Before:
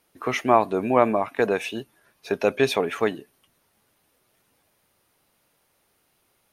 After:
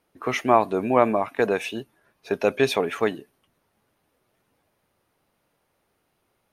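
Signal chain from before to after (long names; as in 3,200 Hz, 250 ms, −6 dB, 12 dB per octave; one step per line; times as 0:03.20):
one half of a high-frequency compander decoder only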